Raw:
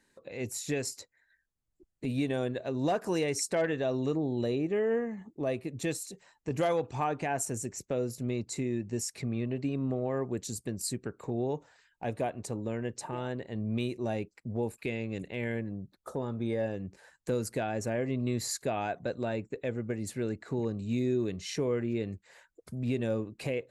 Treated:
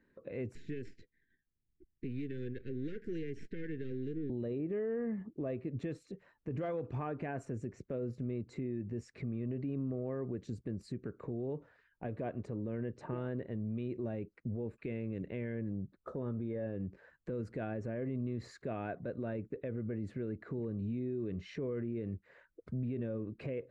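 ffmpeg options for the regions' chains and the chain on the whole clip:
ffmpeg -i in.wav -filter_complex "[0:a]asettb=1/sr,asplit=3[link_01][link_02][link_03];[link_01]atrim=end=0.554[link_04];[link_02]atrim=start=0.55:end=4.3,asetpts=PTS-STARTPTS,afade=type=in:duration=0.004:curve=qsin,afade=type=out:start_time=3.746:duration=0.004:curve=qsin,aeval=exprs='if(lt(val(0),0),0.251*val(0),val(0))':channel_layout=same,asuperstop=centerf=860:order=12:qfactor=0.74,acrossover=split=500|6200[link_05][link_06][link_07];[link_05]acompressor=threshold=-39dB:ratio=4[link_08];[link_06]acompressor=threshold=-46dB:ratio=4[link_09];[link_07]acompressor=threshold=-53dB:ratio=4[link_10];[link_08][link_09][link_10]amix=inputs=3:normalize=0[link_11];[link_03]atrim=start=4.296[link_12];[link_04][link_11]acrossfade=duration=0.004:curve1=hsin:curve2=qsin[link_13];[link_13][link_12]acrossfade=duration=0.004:curve1=qsin:curve2=hsin,lowpass=1400,equalizer=frequency=830:width=2.2:gain=-12,alimiter=level_in=8.5dB:limit=-24dB:level=0:latency=1:release=67,volume=-8.5dB,volume=2.5dB" out.wav

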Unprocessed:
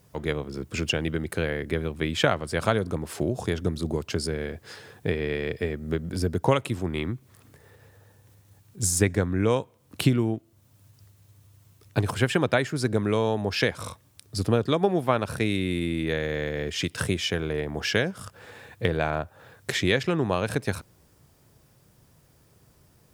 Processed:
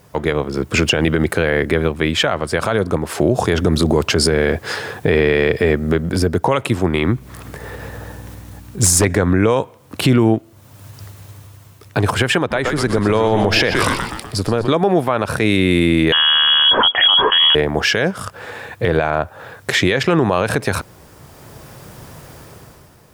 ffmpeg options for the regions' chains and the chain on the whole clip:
ffmpeg -i in.wav -filter_complex "[0:a]asettb=1/sr,asplit=3[link_01][link_02][link_03];[link_01]atrim=end=7.074[link_04];[link_02]atrim=start=7.07:end=9.05,asetpts=PTS-STARTPTS,afade=type=in:duration=0.004:curve=qsin,afade=type=out:start_time=1.976:duration=0.004:curve=qsin,asoftclip=type=hard:threshold=-17dB,aeval=exprs='val(0)+0.002*(sin(2*PI*60*n/s)+sin(2*PI*2*60*n/s)/2+sin(2*PI*3*60*n/s)/3+sin(2*PI*4*60*n/s)/4+sin(2*PI*5*60*n/s)/5)':channel_layout=same[link_05];[link_03]atrim=start=9.046[link_06];[link_04][link_05]acrossfade=duration=0.004:curve1=hsin:curve2=qsin[link_07];[link_07][link_06]acrossfade=duration=0.004:curve1=qsin:curve2=hsin,asettb=1/sr,asplit=3[link_08][link_09][link_10];[link_08]atrim=end=12.384[link_11];[link_09]atrim=start=12.38:end=14.68,asetpts=PTS-STARTPTS,afade=type=in:duration=0.004:curve=qsin,afade=type=out:start_time=2.296:duration=0.004:curve=qsin,asplit=7[link_12][link_13][link_14][link_15][link_16][link_17][link_18];[link_13]adelay=123,afreqshift=-110,volume=-10dB[link_19];[link_14]adelay=246,afreqshift=-220,volume=-15dB[link_20];[link_15]adelay=369,afreqshift=-330,volume=-20.1dB[link_21];[link_16]adelay=492,afreqshift=-440,volume=-25.1dB[link_22];[link_17]adelay=615,afreqshift=-550,volume=-30.1dB[link_23];[link_18]adelay=738,afreqshift=-660,volume=-35.2dB[link_24];[link_12][link_19][link_20][link_21][link_22][link_23][link_24]amix=inputs=7:normalize=0,atrim=end_sample=101430,acompressor=threshold=-32dB:ratio=2:attack=3.2:release=140:knee=1:detection=peak[link_25];[link_10]atrim=start=14.676[link_26];[link_11][link_25]acrossfade=duration=0.004:curve1=hsin:curve2=qsin[link_27];[link_27][link_26]acrossfade=duration=0.004:curve1=qsin:curve2=hsin,asettb=1/sr,asplit=3[link_28][link_29][link_30];[link_28]atrim=end=16.124[link_31];[link_29]atrim=start=16.12:end=17.55,asetpts=PTS-STARTPTS,afade=type=in:duration=0.004:curve=qsin,afade=type=out:start_time=1.426:duration=0.004:curve=qsin,lowshelf=frequency=100:width_type=q:width=1.5:gain=11,lowpass=frequency=2900:width_type=q:width=0.5098,lowpass=frequency=2900:width_type=q:width=0.6013,lowpass=frequency=2900:width_type=q:width=0.9,lowpass=frequency=2900:width_type=q:width=2.563,afreqshift=-3400[link_32];[link_30]atrim=start=17.546[link_33];[link_31][link_32]acrossfade=duration=0.004:curve1=hsin:curve2=qsin[link_34];[link_34][link_33]acrossfade=duration=0.004:curve1=qsin:curve2=hsin,equalizer=frequency=1000:width_type=o:width=3:gain=6.5,dynaudnorm=framelen=100:gausssize=13:maxgain=11.5dB,alimiter=level_in=11.5dB:limit=-1dB:release=50:level=0:latency=1,volume=-3.5dB" out.wav

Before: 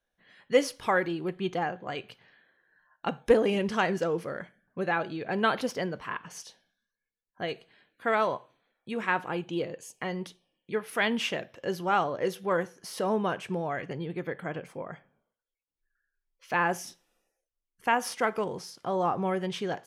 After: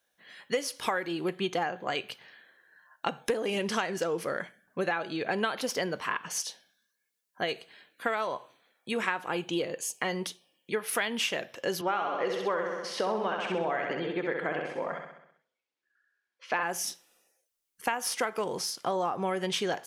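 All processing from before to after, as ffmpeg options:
ffmpeg -i in.wav -filter_complex "[0:a]asettb=1/sr,asplit=3[link_01][link_02][link_03];[link_01]atrim=end=11.814[link_04];[link_02]atrim=start=11.81:end=16.63,asetpts=PTS-STARTPTS,afade=type=in:duration=0.004:curve=qsin,afade=type=out:start_time=4.816:duration=0.004:curve=qsin,highpass=200,lowpass=3500,aecho=1:1:65|130|195|260|325|390|455:0.562|0.315|0.176|0.0988|0.0553|0.031|0.0173,atrim=end_sample=212562[link_05];[link_03]atrim=start=16.626[link_06];[link_04][link_05]acrossfade=duration=0.004:curve1=hsin:curve2=qsin[link_07];[link_07][link_06]acrossfade=duration=0.004:curve1=qsin:curve2=hsin,highpass=frequency=300:poles=1,highshelf=frequency=3800:gain=8,acompressor=threshold=-31dB:ratio=16,volume=5.5dB" out.wav

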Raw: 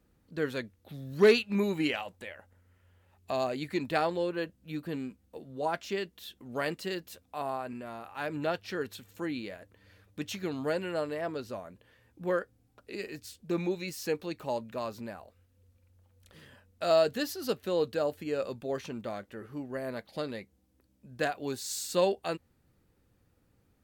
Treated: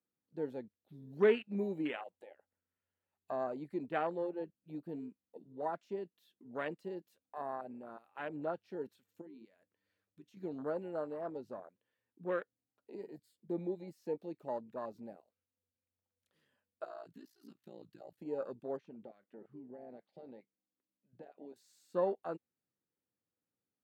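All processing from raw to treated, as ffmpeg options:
ffmpeg -i in.wav -filter_complex "[0:a]asettb=1/sr,asplit=3[link_01][link_02][link_03];[link_01]atrim=end=9.214[link_04];[link_02]atrim=start=9.21:end=10.37,asetpts=PTS-STARTPTS,afade=type=in:duration=0.004:curve=qsin,afade=type=out:start_time=1.156:duration=0.004:curve=qsin,bandreject=frequency=60:width_type=h:width=6,bandreject=frequency=120:width_type=h:width=6,bandreject=frequency=180:width_type=h:width=6,bandreject=frequency=240:width_type=h:width=6,acompressor=threshold=-43dB:ratio=5:attack=3.2:release=140:knee=1:detection=peak[link_05];[link_03]atrim=start=10.366[link_06];[link_04][link_05]acrossfade=duration=0.004:curve1=hsin:curve2=qsin[link_07];[link_07][link_06]acrossfade=duration=0.004:curve1=qsin:curve2=hsin,asettb=1/sr,asplit=3[link_08][link_09][link_10];[link_08]atrim=end=12.974[link_11];[link_09]atrim=start=12.97:end=13.93,asetpts=PTS-STARTPTS,afade=type=in:duration=0.004:curve=qsin,afade=type=out:start_time=0.956:duration=0.004:curve=qsin,equalizer=frequency=5900:width_type=o:width=0.25:gain=-14,bandreject=frequency=2600:width=6.8[link_12];[link_10]atrim=start=13.926[link_13];[link_11][link_12]acrossfade=duration=0.004:curve1=hsin:curve2=qsin[link_14];[link_14][link_13]acrossfade=duration=0.004:curve1=qsin:curve2=hsin,asettb=1/sr,asplit=3[link_15][link_16][link_17];[link_15]atrim=end=16.844[link_18];[link_16]atrim=start=16.84:end=18.18,asetpts=PTS-STARTPTS,afade=type=in:duration=0.004:curve=qsin,afade=type=out:start_time=1.336:duration=0.004:curve=qsin,equalizer=frequency=460:width=1.6:gain=-14,acompressor=threshold=-36dB:ratio=4:attack=3.2:release=140:knee=1:detection=peak,aeval=exprs='val(0)*sin(2*PI*29*n/s)':channel_layout=same[link_19];[link_17]atrim=start=18.176[link_20];[link_18][link_19]acrossfade=duration=0.004:curve1=hsin:curve2=qsin[link_21];[link_21][link_20]acrossfade=duration=0.004:curve1=qsin:curve2=hsin,asettb=1/sr,asplit=3[link_22][link_23][link_24];[link_22]atrim=end=18.774[link_25];[link_23]atrim=start=18.77:end=21.56,asetpts=PTS-STARTPTS,afade=type=in:duration=0.004:curve=qsin,afade=type=out:start_time=2.786:duration=0.004:curve=qsin,aemphasis=mode=production:type=75fm,acompressor=threshold=-38dB:ratio=12:attack=3.2:release=140:knee=1:detection=peak,highpass=100,lowpass=2400[link_26];[link_24]atrim=start=21.556[link_27];[link_25][link_26]acrossfade=duration=0.004:curve1=hsin:curve2=qsin[link_28];[link_28][link_27]acrossfade=duration=0.004:curve1=qsin:curve2=hsin,acrossover=split=2500[link_29][link_30];[link_30]acompressor=threshold=-45dB:ratio=4:attack=1:release=60[link_31];[link_29][link_31]amix=inputs=2:normalize=0,afwtdn=0.0158,highpass=180,volume=-6dB" out.wav

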